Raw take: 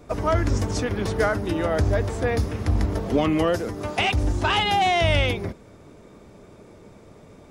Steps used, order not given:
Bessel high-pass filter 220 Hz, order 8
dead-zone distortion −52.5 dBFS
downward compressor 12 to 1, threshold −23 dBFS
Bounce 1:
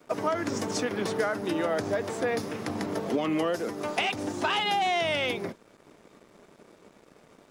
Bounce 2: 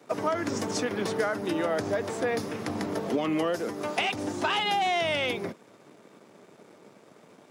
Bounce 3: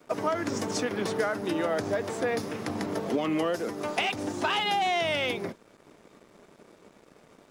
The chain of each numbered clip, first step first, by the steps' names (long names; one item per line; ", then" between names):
Bessel high-pass filter, then dead-zone distortion, then downward compressor
dead-zone distortion, then Bessel high-pass filter, then downward compressor
Bessel high-pass filter, then downward compressor, then dead-zone distortion